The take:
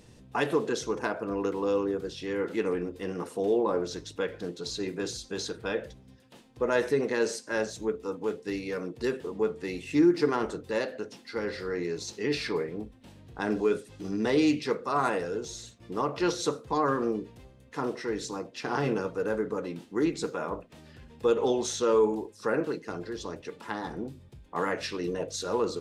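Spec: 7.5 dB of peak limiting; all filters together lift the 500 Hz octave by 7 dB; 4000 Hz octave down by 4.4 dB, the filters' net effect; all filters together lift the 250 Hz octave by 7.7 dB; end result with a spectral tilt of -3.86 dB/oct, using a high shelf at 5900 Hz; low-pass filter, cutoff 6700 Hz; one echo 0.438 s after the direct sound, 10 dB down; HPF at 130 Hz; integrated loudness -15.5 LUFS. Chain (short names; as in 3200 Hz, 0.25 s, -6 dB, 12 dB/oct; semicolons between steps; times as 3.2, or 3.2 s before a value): HPF 130 Hz; LPF 6700 Hz; bell 250 Hz +8.5 dB; bell 500 Hz +5.5 dB; bell 4000 Hz -6 dB; high shelf 5900 Hz +3 dB; limiter -13.5 dBFS; echo 0.438 s -10 dB; gain +10 dB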